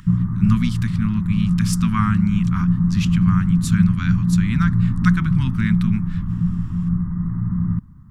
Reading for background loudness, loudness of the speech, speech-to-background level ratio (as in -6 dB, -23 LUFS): -20.5 LUFS, -23.5 LUFS, -3.0 dB